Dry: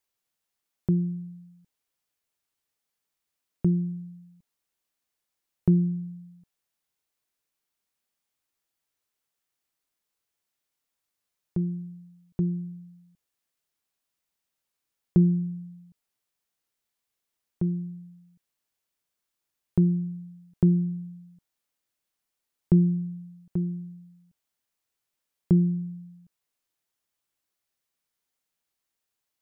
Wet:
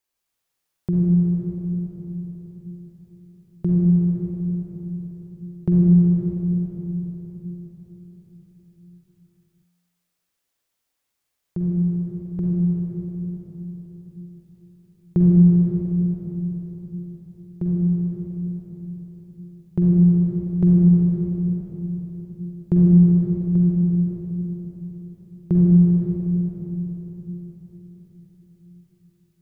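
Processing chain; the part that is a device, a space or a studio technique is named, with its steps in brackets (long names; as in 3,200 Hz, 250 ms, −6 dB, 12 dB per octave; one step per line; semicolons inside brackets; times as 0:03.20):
cathedral (convolution reverb RT60 4.4 s, pre-delay 40 ms, DRR −5 dB)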